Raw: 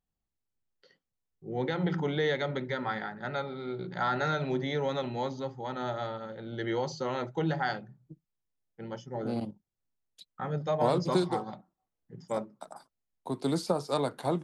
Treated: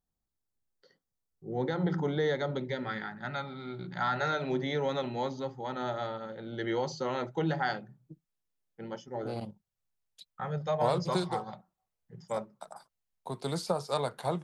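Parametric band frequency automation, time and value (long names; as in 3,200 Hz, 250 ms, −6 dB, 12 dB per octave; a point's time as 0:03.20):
parametric band −12 dB 0.62 octaves
0:02.44 2,600 Hz
0:03.17 460 Hz
0:04.08 460 Hz
0:04.54 75 Hz
0:08.82 75 Hz
0:09.43 290 Hz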